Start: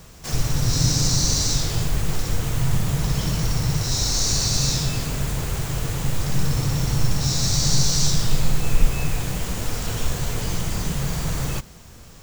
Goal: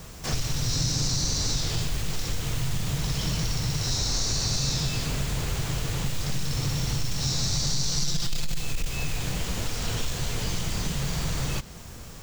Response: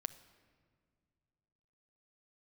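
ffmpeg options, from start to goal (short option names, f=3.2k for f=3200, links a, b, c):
-filter_complex "[0:a]asettb=1/sr,asplit=3[a][b][c];[a]atrim=end=7.974[d];[b]atrim=start=7.97:end=8.6,asetpts=PTS-STARTPTS,afade=t=in:d=0.004:c=qsin,afade=t=out:st=0.626:d=0.004:c=qsin,aecho=1:1:5.8:0.79,atrim=end_sample=27783[e];[c]atrim=start=8.596[f];[d][e]acrossfade=d=0.004:c1=hsin:c2=qsin[g];[g][f]acrossfade=d=0.004:c1=qsin:c2=hsin,asoftclip=type=tanh:threshold=-9dB,acrossover=split=2500|5900[h][i][j];[h]acompressor=threshold=-28dB:ratio=4[k];[i]acompressor=threshold=-32dB:ratio=4[l];[j]acompressor=threshold=-44dB:ratio=4[m];[k][l][m]amix=inputs=3:normalize=0,volume=2.5dB"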